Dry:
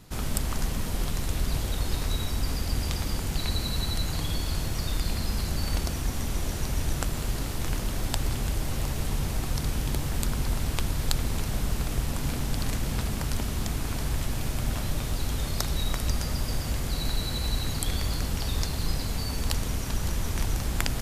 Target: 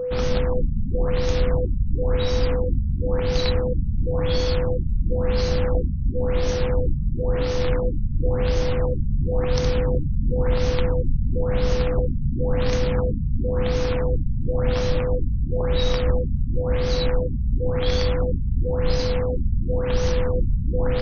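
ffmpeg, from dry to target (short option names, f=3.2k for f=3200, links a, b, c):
-af "aeval=exprs='val(0)+0.0316*sin(2*PI*500*n/s)':c=same,aeval=exprs='0.15*(abs(mod(val(0)/0.15+3,4)-2)-1)':c=same,afftfilt=real='re*lt(b*sr/1024,220*pow(6700/220,0.5+0.5*sin(2*PI*0.96*pts/sr)))':imag='im*lt(b*sr/1024,220*pow(6700/220,0.5+0.5*sin(2*PI*0.96*pts/sr)))':win_size=1024:overlap=0.75,volume=6.5dB"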